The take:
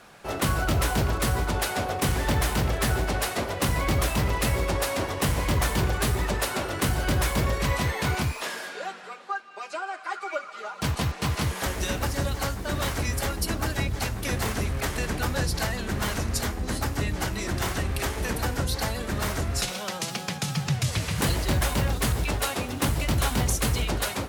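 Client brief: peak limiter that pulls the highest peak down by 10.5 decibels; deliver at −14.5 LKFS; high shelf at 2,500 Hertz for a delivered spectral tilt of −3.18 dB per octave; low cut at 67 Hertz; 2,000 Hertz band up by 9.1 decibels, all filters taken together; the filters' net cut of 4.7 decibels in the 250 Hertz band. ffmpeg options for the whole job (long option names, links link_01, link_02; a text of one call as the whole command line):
ffmpeg -i in.wav -af "highpass=67,equalizer=frequency=250:width_type=o:gain=-7,equalizer=frequency=2000:width_type=o:gain=9,highshelf=frequency=2500:gain=5.5,volume=12dB,alimiter=limit=-5.5dB:level=0:latency=1" out.wav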